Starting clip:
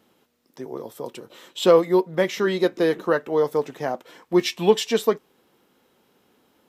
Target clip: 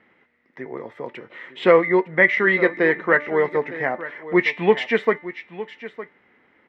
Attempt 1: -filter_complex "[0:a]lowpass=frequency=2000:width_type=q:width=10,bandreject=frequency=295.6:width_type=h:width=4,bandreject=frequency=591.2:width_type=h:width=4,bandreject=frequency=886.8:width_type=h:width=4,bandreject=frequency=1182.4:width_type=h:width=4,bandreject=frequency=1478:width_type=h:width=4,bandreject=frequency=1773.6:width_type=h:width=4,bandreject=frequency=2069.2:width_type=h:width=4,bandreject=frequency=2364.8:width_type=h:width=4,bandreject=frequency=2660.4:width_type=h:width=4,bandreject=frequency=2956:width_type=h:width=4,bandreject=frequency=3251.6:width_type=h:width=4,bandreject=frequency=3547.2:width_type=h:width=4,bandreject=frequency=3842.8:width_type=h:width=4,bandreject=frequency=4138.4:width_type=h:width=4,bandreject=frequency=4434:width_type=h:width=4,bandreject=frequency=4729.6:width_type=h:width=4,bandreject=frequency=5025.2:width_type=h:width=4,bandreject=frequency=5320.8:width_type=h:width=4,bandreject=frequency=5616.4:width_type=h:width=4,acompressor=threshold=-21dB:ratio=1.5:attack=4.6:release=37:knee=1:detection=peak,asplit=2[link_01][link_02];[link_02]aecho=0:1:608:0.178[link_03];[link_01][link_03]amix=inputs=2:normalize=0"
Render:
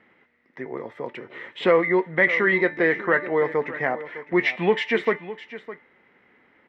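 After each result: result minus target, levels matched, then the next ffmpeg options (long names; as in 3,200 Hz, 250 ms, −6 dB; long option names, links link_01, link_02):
echo 301 ms early; downward compressor: peak gain reduction +4.5 dB
-filter_complex "[0:a]lowpass=frequency=2000:width_type=q:width=10,bandreject=frequency=295.6:width_type=h:width=4,bandreject=frequency=591.2:width_type=h:width=4,bandreject=frequency=886.8:width_type=h:width=4,bandreject=frequency=1182.4:width_type=h:width=4,bandreject=frequency=1478:width_type=h:width=4,bandreject=frequency=1773.6:width_type=h:width=4,bandreject=frequency=2069.2:width_type=h:width=4,bandreject=frequency=2364.8:width_type=h:width=4,bandreject=frequency=2660.4:width_type=h:width=4,bandreject=frequency=2956:width_type=h:width=4,bandreject=frequency=3251.6:width_type=h:width=4,bandreject=frequency=3547.2:width_type=h:width=4,bandreject=frequency=3842.8:width_type=h:width=4,bandreject=frequency=4138.4:width_type=h:width=4,bandreject=frequency=4434:width_type=h:width=4,bandreject=frequency=4729.6:width_type=h:width=4,bandreject=frequency=5025.2:width_type=h:width=4,bandreject=frequency=5320.8:width_type=h:width=4,bandreject=frequency=5616.4:width_type=h:width=4,acompressor=threshold=-21dB:ratio=1.5:attack=4.6:release=37:knee=1:detection=peak,asplit=2[link_01][link_02];[link_02]aecho=0:1:909:0.178[link_03];[link_01][link_03]amix=inputs=2:normalize=0"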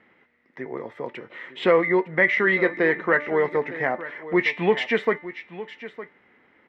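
downward compressor: peak gain reduction +4.5 dB
-filter_complex "[0:a]lowpass=frequency=2000:width_type=q:width=10,bandreject=frequency=295.6:width_type=h:width=4,bandreject=frequency=591.2:width_type=h:width=4,bandreject=frequency=886.8:width_type=h:width=4,bandreject=frequency=1182.4:width_type=h:width=4,bandreject=frequency=1478:width_type=h:width=4,bandreject=frequency=1773.6:width_type=h:width=4,bandreject=frequency=2069.2:width_type=h:width=4,bandreject=frequency=2364.8:width_type=h:width=4,bandreject=frequency=2660.4:width_type=h:width=4,bandreject=frequency=2956:width_type=h:width=4,bandreject=frequency=3251.6:width_type=h:width=4,bandreject=frequency=3547.2:width_type=h:width=4,bandreject=frequency=3842.8:width_type=h:width=4,bandreject=frequency=4138.4:width_type=h:width=4,bandreject=frequency=4434:width_type=h:width=4,bandreject=frequency=4729.6:width_type=h:width=4,bandreject=frequency=5025.2:width_type=h:width=4,bandreject=frequency=5320.8:width_type=h:width=4,bandreject=frequency=5616.4:width_type=h:width=4,asplit=2[link_01][link_02];[link_02]aecho=0:1:909:0.178[link_03];[link_01][link_03]amix=inputs=2:normalize=0"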